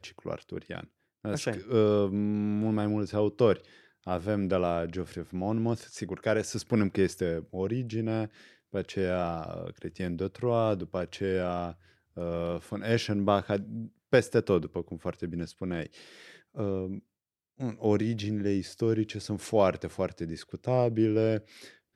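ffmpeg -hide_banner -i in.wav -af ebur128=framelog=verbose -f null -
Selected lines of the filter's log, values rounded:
Integrated loudness:
  I:         -30.2 LUFS
  Threshold: -40.6 LUFS
Loudness range:
  LRA:         4.5 LU
  Threshold: -50.7 LUFS
  LRA low:   -33.2 LUFS
  LRA high:  -28.7 LUFS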